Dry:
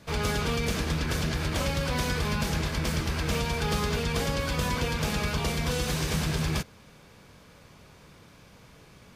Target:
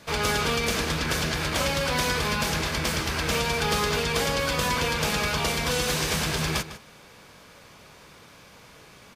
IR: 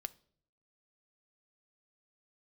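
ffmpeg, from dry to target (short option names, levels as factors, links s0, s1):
-filter_complex "[0:a]lowshelf=f=290:g=-10,asplit=2[s0][s1];[s1]adelay=151.6,volume=0.224,highshelf=f=4000:g=-3.41[s2];[s0][s2]amix=inputs=2:normalize=0,volume=2"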